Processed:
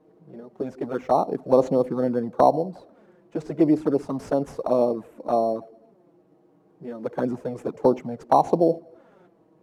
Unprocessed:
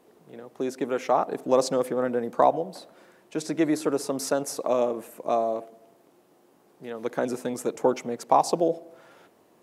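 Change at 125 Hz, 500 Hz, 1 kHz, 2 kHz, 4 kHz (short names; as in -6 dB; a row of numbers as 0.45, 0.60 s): +7.5 dB, +2.5 dB, +1.5 dB, -5.5 dB, n/a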